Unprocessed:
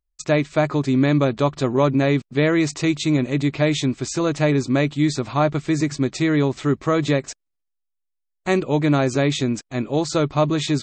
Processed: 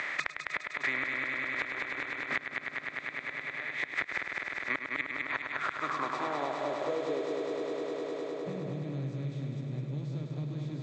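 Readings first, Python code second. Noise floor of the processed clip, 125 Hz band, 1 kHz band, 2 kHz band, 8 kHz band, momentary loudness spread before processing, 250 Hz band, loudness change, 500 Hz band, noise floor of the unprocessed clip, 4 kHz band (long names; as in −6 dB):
−46 dBFS, −16.5 dB, −10.0 dB, −3.0 dB, −23.0 dB, 5 LU, −22.0 dB, −14.0 dB, −15.5 dB, −77 dBFS, −15.0 dB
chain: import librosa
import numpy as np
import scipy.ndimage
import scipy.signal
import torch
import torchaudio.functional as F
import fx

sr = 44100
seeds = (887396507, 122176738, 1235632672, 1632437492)

p1 = fx.bin_compress(x, sr, power=0.4)
p2 = scipy.signal.sosfilt(scipy.signal.butter(4, 100.0, 'highpass', fs=sr, output='sos'), p1)
p3 = np.diff(p2, prepend=0.0)
p4 = fx.filter_sweep_lowpass(p3, sr, from_hz=2000.0, to_hz=130.0, start_s=5.24, end_s=8.61, q=5.8)
p5 = fx.gate_flip(p4, sr, shuts_db=-17.0, range_db=-32)
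p6 = p5 + fx.echo_heads(p5, sr, ms=102, heads='first and second', feedback_pct=74, wet_db=-7.5, dry=0)
y = fx.band_squash(p6, sr, depth_pct=100)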